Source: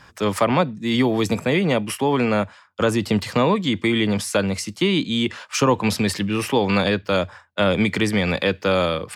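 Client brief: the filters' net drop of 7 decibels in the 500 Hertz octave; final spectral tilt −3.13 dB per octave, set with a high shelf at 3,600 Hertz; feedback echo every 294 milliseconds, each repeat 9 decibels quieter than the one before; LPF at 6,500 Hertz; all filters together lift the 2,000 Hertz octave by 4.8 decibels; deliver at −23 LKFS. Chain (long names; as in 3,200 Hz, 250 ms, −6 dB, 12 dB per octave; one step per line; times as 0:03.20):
low-pass filter 6,500 Hz
parametric band 500 Hz −9 dB
parametric band 2,000 Hz +5.5 dB
high-shelf EQ 3,600 Hz +3 dB
repeating echo 294 ms, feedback 35%, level −9 dB
level −2.5 dB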